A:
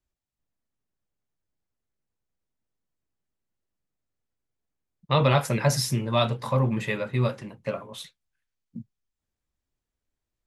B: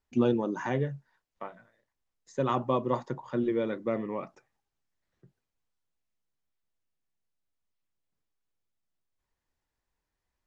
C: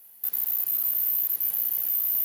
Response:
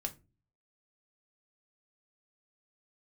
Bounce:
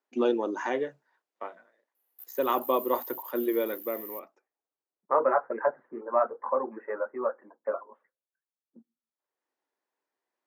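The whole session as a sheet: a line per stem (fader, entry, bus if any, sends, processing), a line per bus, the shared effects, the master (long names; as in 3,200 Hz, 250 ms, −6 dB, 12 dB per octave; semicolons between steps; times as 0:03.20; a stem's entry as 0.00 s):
+0.5 dB, 0.00 s, send −20.5 dB, high-pass filter 330 Hz 12 dB per octave; reverb reduction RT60 0.83 s; Butterworth low-pass 1,600 Hz 48 dB per octave
+2.5 dB, 0.00 s, no send, automatic ducking −20 dB, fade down 1.50 s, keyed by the first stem
−18.0 dB, 1.95 s, send −13 dB, no processing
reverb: on, RT60 0.30 s, pre-delay 4 ms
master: high-pass filter 300 Hz 24 dB per octave; one half of a high-frequency compander decoder only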